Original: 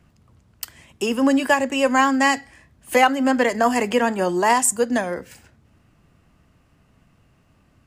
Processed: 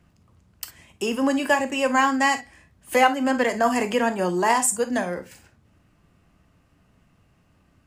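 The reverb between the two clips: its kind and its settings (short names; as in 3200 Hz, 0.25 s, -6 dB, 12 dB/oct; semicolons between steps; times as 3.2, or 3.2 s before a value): non-linear reverb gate 80 ms flat, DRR 8 dB; gain -3 dB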